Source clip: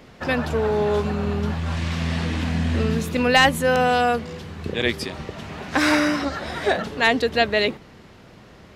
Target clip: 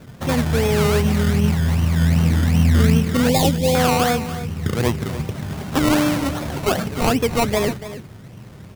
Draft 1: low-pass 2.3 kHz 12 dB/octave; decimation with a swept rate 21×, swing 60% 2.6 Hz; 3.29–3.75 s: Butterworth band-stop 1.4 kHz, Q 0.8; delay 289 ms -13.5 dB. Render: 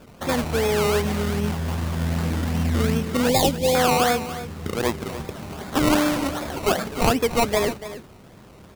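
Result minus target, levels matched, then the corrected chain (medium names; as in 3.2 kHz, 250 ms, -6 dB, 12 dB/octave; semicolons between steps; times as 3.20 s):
125 Hz band -5.0 dB
low-pass 2.3 kHz 12 dB/octave; peaking EQ 120 Hz +13.5 dB 1.4 oct; decimation with a swept rate 21×, swing 60% 2.6 Hz; 3.29–3.75 s: Butterworth band-stop 1.4 kHz, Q 0.8; delay 289 ms -13.5 dB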